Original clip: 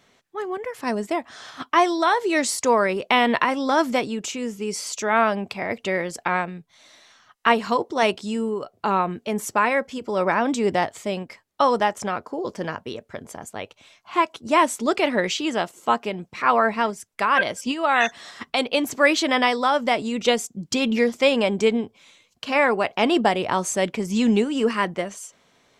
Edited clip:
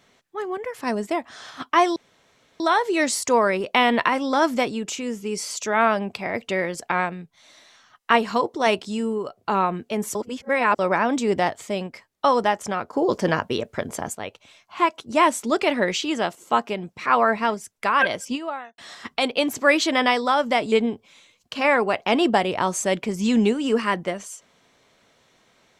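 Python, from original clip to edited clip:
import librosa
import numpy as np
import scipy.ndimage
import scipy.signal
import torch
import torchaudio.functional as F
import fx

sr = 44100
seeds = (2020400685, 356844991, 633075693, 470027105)

y = fx.studio_fade_out(x, sr, start_s=17.55, length_s=0.59)
y = fx.edit(y, sr, fx.insert_room_tone(at_s=1.96, length_s=0.64),
    fx.reverse_span(start_s=9.51, length_s=0.64),
    fx.clip_gain(start_s=12.29, length_s=1.22, db=7.5),
    fx.cut(start_s=20.08, length_s=1.55), tone=tone)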